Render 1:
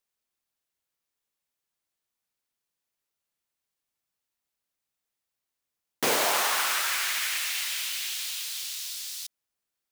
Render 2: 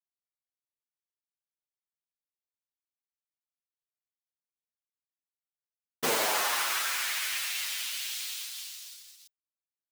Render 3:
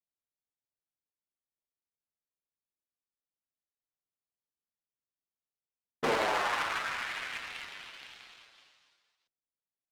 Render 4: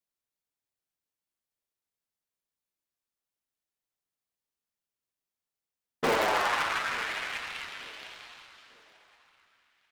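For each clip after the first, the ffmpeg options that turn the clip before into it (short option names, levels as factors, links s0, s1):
-filter_complex "[0:a]agate=range=0.112:threshold=0.02:ratio=16:detection=peak,asplit=2[s0][s1];[s1]adelay=7.9,afreqshift=-1.7[s2];[s0][s2]amix=inputs=2:normalize=1"
-af "adynamicsmooth=sensitivity=2.5:basefreq=1000,volume=1.19"
-filter_complex "[0:a]asplit=2[s0][s1];[s1]aeval=exprs='(mod(10*val(0)+1,2)-1)/10':c=same,volume=0.473[s2];[s0][s2]amix=inputs=2:normalize=0,aecho=1:1:891|1782|2673:0.1|0.034|0.0116"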